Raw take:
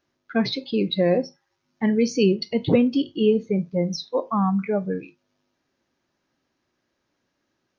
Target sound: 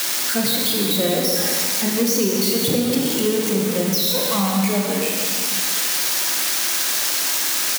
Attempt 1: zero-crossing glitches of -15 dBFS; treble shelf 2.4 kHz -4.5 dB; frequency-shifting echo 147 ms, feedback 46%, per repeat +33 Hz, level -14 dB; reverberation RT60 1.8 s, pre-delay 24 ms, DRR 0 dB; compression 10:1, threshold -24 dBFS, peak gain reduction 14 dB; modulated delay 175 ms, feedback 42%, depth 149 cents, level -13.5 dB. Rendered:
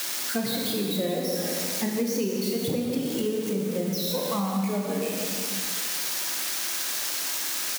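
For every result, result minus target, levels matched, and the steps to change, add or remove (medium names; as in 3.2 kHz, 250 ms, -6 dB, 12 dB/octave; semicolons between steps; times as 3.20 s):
compression: peak gain reduction +8 dB; zero-crossing glitches: distortion -8 dB
change: compression 10:1, threshold -15 dBFS, peak gain reduction 6 dB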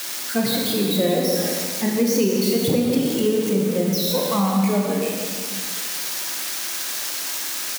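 zero-crossing glitches: distortion -8 dB
change: zero-crossing glitches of -7 dBFS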